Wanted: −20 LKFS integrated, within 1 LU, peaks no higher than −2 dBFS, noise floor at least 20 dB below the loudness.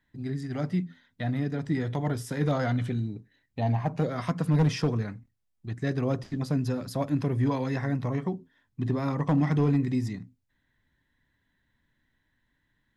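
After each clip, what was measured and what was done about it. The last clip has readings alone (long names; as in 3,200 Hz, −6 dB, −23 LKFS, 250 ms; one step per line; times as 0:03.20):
share of clipped samples 0.3%; peaks flattened at −17.0 dBFS; integrated loudness −29.0 LKFS; sample peak −17.0 dBFS; target loudness −20.0 LKFS
→ clipped peaks rebuilt −17 dBFS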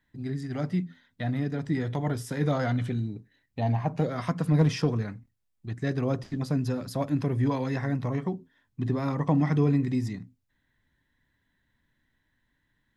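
share of clipped samples 0.0%; integrated loudness −28.5 LKFS; sample peak −11.0 dBFS; target loudness −20.0 LKFS
→ level +8.5 dB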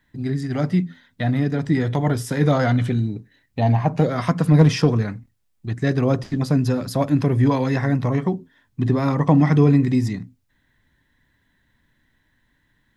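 integrated loudness −20.0 LKFS; sample peak −2.5 dBFS; background noise floor −67 dBFS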